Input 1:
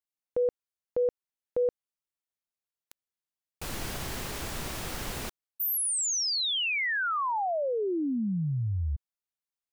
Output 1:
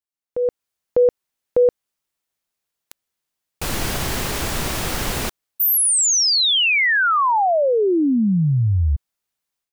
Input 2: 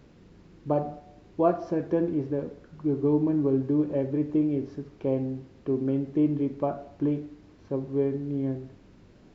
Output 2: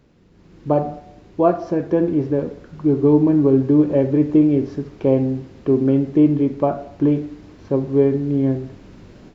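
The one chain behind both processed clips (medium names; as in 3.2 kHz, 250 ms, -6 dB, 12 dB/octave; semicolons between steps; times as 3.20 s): level rider gain up to 14 dB; trim -2 dB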